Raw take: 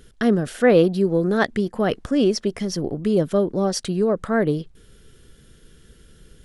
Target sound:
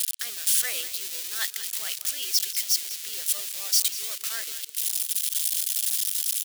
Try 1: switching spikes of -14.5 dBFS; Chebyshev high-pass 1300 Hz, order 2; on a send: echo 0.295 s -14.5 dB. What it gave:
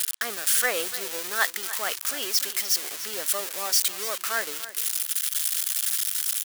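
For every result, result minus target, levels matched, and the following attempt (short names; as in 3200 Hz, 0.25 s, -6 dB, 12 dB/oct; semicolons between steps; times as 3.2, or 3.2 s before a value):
1000 Hz band +14.5 dB; echo 0.103 s late
switching spikes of -14.5 dBFS; Chebyshev high-pass 3100 Hz, order 2; on a send: echo 0.295 s -14.5 dB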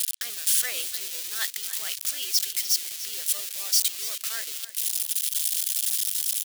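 echo 0.103 s late
switching spikes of -14.5 dBFS; Chebyshev high-pass 3100 Hz, order 2; on a send: echo 0.192 s -14.5 dB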